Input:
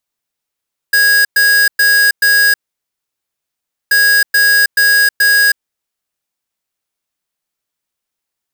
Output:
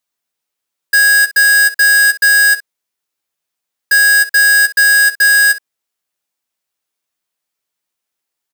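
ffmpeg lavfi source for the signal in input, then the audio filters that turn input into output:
-f lavfi -i "aevalsrc='0.335*(2*lt(mod(1650*t,1),0.5)-1)*clip(min(mod(mod(t,2.98),0.43),0.32-mod(mod(t,2.98),0.43))/0.005,0,1)*lt(mod(t,2.98),1.72)':d=5.96:s=44100"
-af "lowshelf=f=140:g=-9.5,aecho=1:1:12|64:0.473|0.158"

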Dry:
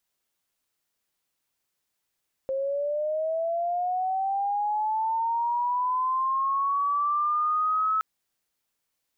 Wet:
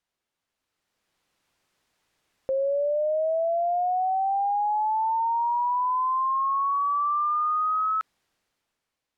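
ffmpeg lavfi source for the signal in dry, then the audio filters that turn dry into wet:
-f lavfi -i "aevalsrc='pow(10,(-25+3.5*t/5.52)/20)*sin(2*PI*(530*t+770*t*t/(2*5.52)))':d=5.52:s=44100"
-af "aemphasis=mode=reproduction:type=50fm,alimiter=level_in=9.5dB:limit=-24dB:level=0:latency=1:release=34,volume=-9.5dB,dynaudnorm=f=220:g=9:m=12dB"

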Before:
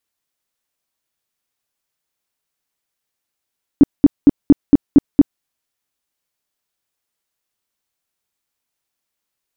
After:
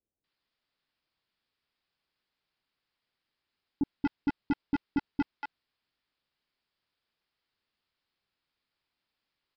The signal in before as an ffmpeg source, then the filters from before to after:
-f lavfi -i "aevalsrc='0.794*sin(2*PI*285*mod(t,0.23))*lt(mod(t,0.23),7/285)':d=1.61:s=44100"
-filter_complex "[0:a]alimiter=limit=-10dB:level=0:latency=1:release=10,aresample=11025,asoftclip=type=hard:threshold=-23dB,aresample=44100,acrossover=split=630[a][b];[b]adelay=240[c];[a][c]amix=inputs=2:normalize=0"

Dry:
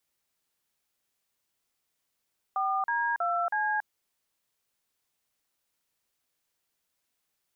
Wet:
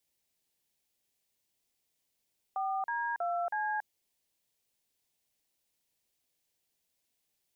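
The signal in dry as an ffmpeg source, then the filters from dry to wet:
-f lavfi -i "aevalsrc='0.0398*clip(min(mod(t,0.321),0.28-mod(t,0.321))/0.002,0,1)*(eq(floor(t/0.321),0)*(sin(2*PI*770*mod(t,0.321))+sin(2*PI*1209*mod(t,0.321)))+eq(floor(t/0.321),1)*(sin(2*PI*941*mod(t,0.321))+sin(2*PI*1633*mod(t,0.321)))+eq(floor(t/0.321),2)*(sin(2*PI*697*mod(t,0.321))+sin(2*PI*1336*mod(t,0.321)))+eq(floor(t/0.321),3)*(sin(2*PI*852*mod(t,0.321))+sin(2*PI*1633*mod(t,0.321))))':d=1.284:s=44100"
-af "equalizer=f=1.3k:w=1.7:g=-10.5"

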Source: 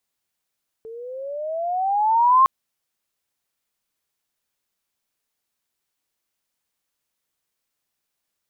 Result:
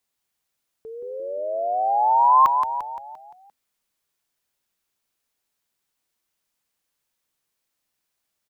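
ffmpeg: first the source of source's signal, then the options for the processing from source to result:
-f lavfi -i "aevalsrc='pow(10,(-10+24*(t/1.61-1))/20)*sin(2*PI*441*1.61/(15.5*log(2)/12)*(exp(15.5*log(2)/12*t/1.61)-1))':d=1.61:s=44100"
-filter_complex "[0:a]asplit=7[a][b][c][d][e][f][g];[b]adelay=173,afreqshift=-44,volume=-6.5dB[h];[c]adelay=346,afreqshift=-88,volume=-12.7dB[i];[d]adelay=519,afreqshift=-132,volume=-18.9dB[j];[e]adelay=692,afreqshift=-176,volume=-25.1dB[k];[f]adelay=865,afreqshift=-220,volume=-31.3dB[l];[g]adelay=1038,afreqshift=-264,volume=-37.5dB[m];[a][h][i][j][k][l][m]amix=inputs=7:normalize=0"

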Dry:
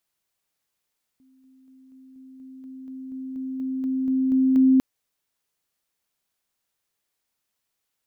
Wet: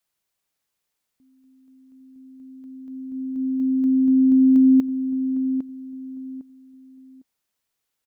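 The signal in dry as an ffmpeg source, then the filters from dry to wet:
-f lavfi -i "aevalsrc='pow(10,(-55+3*floor(t/0.24))/20)*sin(2*PI*262*t)':d=3.6:s=44100"
-filter_complex "[0:a]acompressor=threshold=-21dB:ratio=6,adynamicequalizer=threshold=0.0126:dfrequency=260:dqfactor=2.4:tfrequency=260:tqfactor=2.4:attack=5:release=100:ratio=0.375:range=3.5:mode=boostabove:tftype=bell,asplit=2[a][b];[b]adelay=805,lowpass=f=990:p=1,volume=-8.5dB,asplit=2[c][d];[d]adelay=805,lowpass=f=990:p=1,volume=0.28,asplit=2[e][f];[f]adelay=805,lowpass=f=990:p=1,volume=0.28[g];[a][c][e][g]amix=inputs=4:normalize=0"

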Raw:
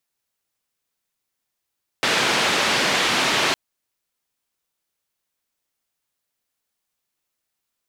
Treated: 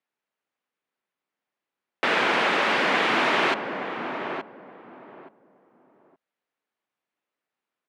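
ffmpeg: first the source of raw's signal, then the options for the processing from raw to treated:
-f lavfi -i "anoisesrc=c=white:d=1.51:r=44100:seed=1,highpass=f=160,lowpass=f=3500,volume=-7.4dB"
-filter_complex "[0:a]lowpass=12k,acrossover=split=170 2900:gain=0.0794 1 0.112[a][b][c];[a][b][c]amix=inputs=3:normalize=0,asplit=2[d][e];[e]adelay=873,lowpass=f=890:p=1,volume=-4.5dB,asplit=2[f][g];[g]adelay=873,lowpass=f=890:p=1,volume=0.25,asplit=2[h][i];[i]adelay=873,lowpass=f=890:p=1,volume=0.25[j];[f][h][j]amix=inputs=3:normalize=0[k];[d][k]amix=inputs=2:normalize=0"

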